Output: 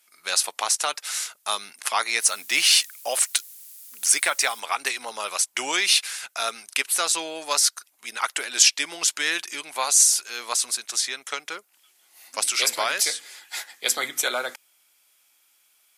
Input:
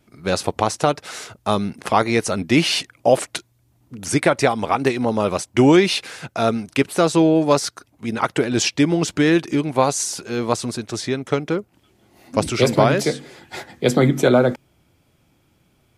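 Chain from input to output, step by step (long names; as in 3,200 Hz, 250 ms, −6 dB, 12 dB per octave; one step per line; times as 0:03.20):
0:02.20–0:04.59: background noise blue −53 dBFS
high-pass filter 1,300 Hz 12 dB per octave
parametric band 12,000 Hz +13 dB 1.8 octaves
level −1 dB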